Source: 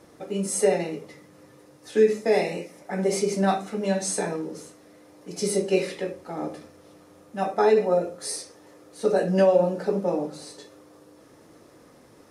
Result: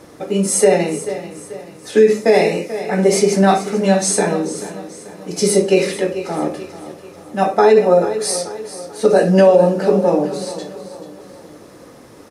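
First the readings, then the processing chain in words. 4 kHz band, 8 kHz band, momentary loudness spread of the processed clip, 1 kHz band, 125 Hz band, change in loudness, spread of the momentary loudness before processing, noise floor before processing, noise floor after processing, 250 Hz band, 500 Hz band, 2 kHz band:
+10.5 dB, +10.5 dB, 20 LU, +10.0 dB, +10.5 dB, +9.5 dB, 16 LU, -53 dBFS, -41 dBFS, +10.5 dB, +9.5 dB, +10.0 dB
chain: on a send: feedback delay 437 ms, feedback 43%, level -14 dB; on the sum: loudness maximiser +11.5 dB; trim -1 dB

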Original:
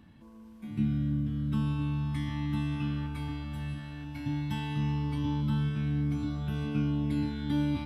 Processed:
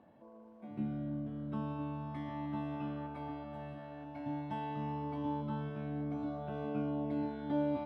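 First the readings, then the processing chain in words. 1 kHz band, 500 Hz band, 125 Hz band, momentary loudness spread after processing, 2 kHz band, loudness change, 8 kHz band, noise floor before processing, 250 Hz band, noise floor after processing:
+2.0 dB, +5.5 dB, -12.5 dB, 10 LU, -8.5 dB, -7.5 dB, no reading, -51 dBFS, -6.5 dB, -56 dBFS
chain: band-pass filter 620 Hz, Q 3.8; trim +11.5 dB

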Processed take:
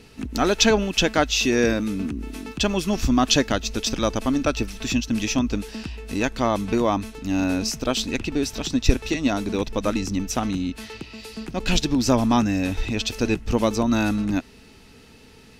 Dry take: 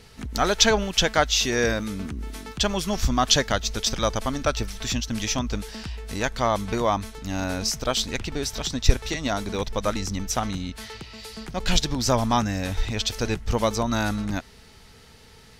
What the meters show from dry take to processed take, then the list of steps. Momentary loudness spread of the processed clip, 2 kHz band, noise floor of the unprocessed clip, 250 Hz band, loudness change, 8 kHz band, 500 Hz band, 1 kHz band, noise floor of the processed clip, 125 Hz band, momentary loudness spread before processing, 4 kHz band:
10 LU, +1.0 dB, -50 dBFS, +7.0 dB, +2.0 dB, -1.5 dB, +2.0 dB, -1.0 dB, -49 dBFS, +0.5 dB, 13 LU, -1.0 dB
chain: small resonant body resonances 280/2600 Hz, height 11 dB, ringing for 20 ms; trim -1.5 dB

